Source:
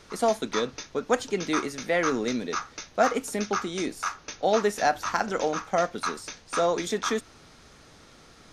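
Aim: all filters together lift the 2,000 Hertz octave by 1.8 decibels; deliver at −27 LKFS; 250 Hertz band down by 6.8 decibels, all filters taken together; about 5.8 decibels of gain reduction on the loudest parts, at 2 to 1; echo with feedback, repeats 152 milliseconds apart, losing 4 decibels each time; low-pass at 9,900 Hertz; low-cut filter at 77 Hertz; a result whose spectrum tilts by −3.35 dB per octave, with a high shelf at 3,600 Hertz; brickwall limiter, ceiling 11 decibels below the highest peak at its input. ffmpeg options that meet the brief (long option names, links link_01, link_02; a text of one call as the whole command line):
ffmpeg -i in.wav -af "highpass=77,lowpass=9900,equalizer=frequency=250:width_type=o:gain=-9,equalizer=frequency=2000:width_type=o:gain=4.5,highshelf=frequency=3600:gain=-8.5,acompressor=threshold=-28dB:ratio=2,alimiter=level_in=0.5dB:limit=-24dB:level=0:latency=1,volume=-0.5dB,aecho=1:1:152|304|456|608|760|912|1064|1216|1368:0.631|0.398|0.25|0.158|0.0994|0.0626|0.0394|0.0249|0.0157,volume=7dB" out.wav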